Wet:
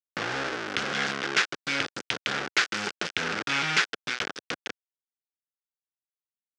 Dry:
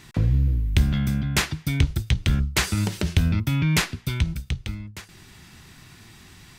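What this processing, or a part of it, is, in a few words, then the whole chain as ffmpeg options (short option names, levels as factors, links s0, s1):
hand-held game console: -af "acrusher=bits=3:mix=0:aa=0.000001,highpass=93,highpass=470,equalizer=f=640:t=q:w=4:g=-7,equalizer=f=960:t=q:w=4:g=-7,equalizer=f=1500:t=q:w=4:g=7,equalizer=f=4100:t=q:w=4:g=-3,lowpass=f=5600:w=0.5412,lowpass=f=5600:w=1.3066"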